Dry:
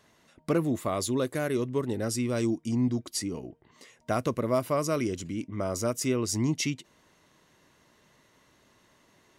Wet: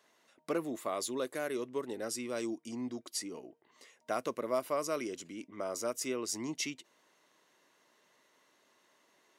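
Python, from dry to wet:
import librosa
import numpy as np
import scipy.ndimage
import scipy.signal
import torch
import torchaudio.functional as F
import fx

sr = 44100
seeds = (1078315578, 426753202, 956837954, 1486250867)

y = scipy.signal.sosfilt(scipy.signal.butter(2, 350.0, 'highpass', fs=sr, output='sos'), x)
y = y * 10.0 ** (-5.0 / 20.0)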